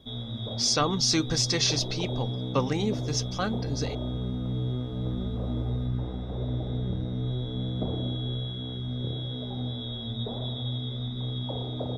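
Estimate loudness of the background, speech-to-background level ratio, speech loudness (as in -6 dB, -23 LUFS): -32.5 LUFS, 5.0 dB, -27.5 LUFS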